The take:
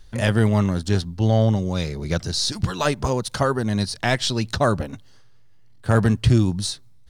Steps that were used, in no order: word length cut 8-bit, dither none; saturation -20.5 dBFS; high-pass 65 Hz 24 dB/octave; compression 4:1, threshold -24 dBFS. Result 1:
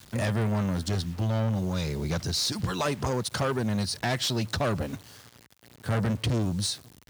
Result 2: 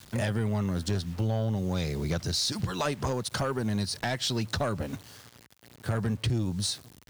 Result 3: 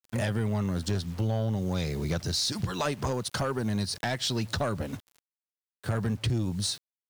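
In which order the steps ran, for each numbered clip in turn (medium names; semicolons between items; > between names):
word length cut > saturation > compression > high-pass; word length cut > high-pass > compression > saturation; high-pass > word length cut > compression > saturation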